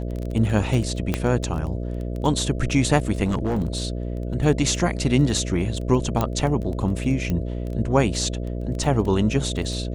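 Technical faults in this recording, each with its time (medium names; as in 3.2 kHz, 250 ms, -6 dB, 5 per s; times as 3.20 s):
buzz 60 Hz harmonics 11 -28 dBFS
crackle 12 per s -28 dBFS
1.14 s: pop -8 dBFS
3.24–3.88 s: clipped -18.5 dBFS
6.21 s: pop -9 dBFS
7.30 s: pop -14 dBFS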